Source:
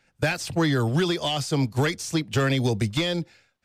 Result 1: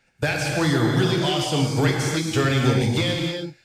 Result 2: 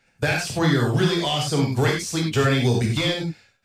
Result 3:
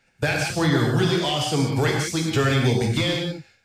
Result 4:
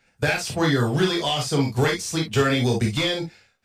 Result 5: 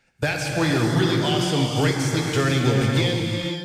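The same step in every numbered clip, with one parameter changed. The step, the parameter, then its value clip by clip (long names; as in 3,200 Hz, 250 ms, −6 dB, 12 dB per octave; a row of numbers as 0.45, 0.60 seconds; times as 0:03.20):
reverb whose tail is shaped and stops, gate: 330, 120, 210, 80, 540 milliseconds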